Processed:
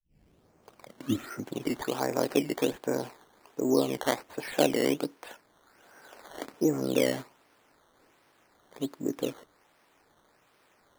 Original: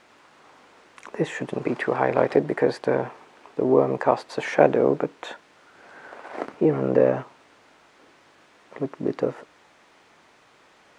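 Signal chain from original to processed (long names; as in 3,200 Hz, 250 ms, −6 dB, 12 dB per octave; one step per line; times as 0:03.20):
turntable start at the beginning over 1.69 s
dynamic equaliser 280 Hz, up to +8 dB, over −38 dBFS, Q 2.8
sample-and-hold swept by an LFO 12×, swing 100% 1.3 Hz
level −9 dB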